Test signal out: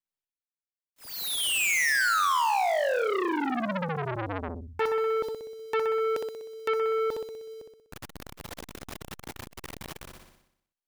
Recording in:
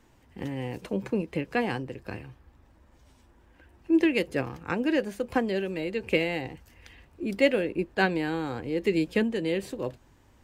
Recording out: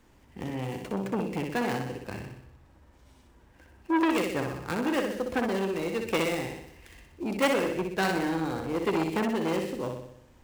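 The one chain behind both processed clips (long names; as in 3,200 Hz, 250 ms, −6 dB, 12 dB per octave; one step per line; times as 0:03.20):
gap after every zero crossing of 0.094 ms
flutter between parallel walls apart 10.6 metres, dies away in 0.73 s
saturating transformer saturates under 1,300 Hz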